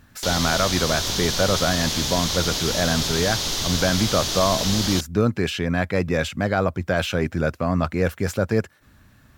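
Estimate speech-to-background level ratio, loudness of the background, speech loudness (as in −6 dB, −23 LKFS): 0.0 dB, −23.5 LKFS, −23.5 LKFS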